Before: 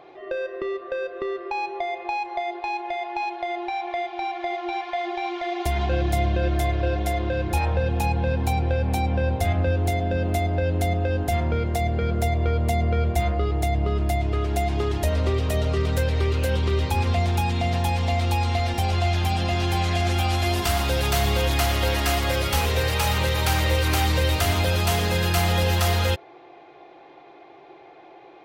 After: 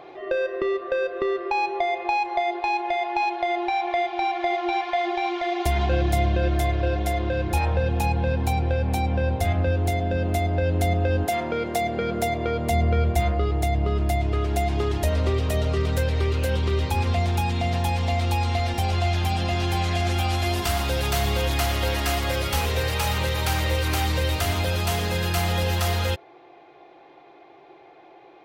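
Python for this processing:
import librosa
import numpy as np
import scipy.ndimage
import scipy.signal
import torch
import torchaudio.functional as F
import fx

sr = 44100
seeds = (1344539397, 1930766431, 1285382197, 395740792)

y = fx.highpass(x, sr, hz=fx.line((11.25, 290.0), (12.7, 140.0)), slope=12, at=(11.25, 12.7), fade=0.02)
y = fx.rider(y, sr, range_db=4, speed_s=2.0)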